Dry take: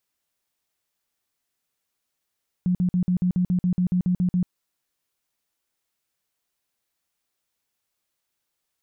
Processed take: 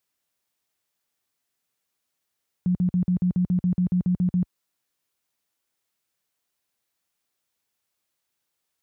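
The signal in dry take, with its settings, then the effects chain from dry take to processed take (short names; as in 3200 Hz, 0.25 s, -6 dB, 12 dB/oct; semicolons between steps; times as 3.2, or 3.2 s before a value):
tone bursts 180 Hz, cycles 16, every 0.14 s, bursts 13, -18 dBFS
HPF 59 Hz 12 dB/oct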